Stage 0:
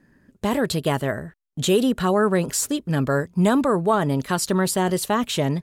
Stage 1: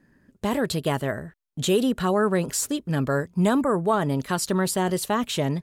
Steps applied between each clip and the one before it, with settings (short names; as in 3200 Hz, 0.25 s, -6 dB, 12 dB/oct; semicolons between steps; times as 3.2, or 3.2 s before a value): spectral delete 3.63–3.85, 2300–6800 Hz; gain -2.5 dB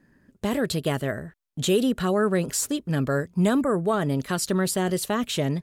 dynamic EQ 930 Hz, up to -7 dB, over -41 dBFS, Q 2.7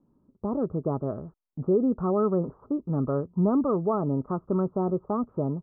AGC gain up to 3.5 dB; rippled Chebyshev low-pass 1300 Hz, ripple 3 dB; gain -4 dB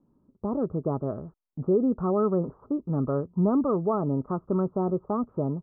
nothing audible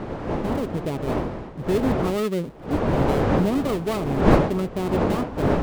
switching dead time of 0.21 ms; wind noise 510 Hz -24 dBFS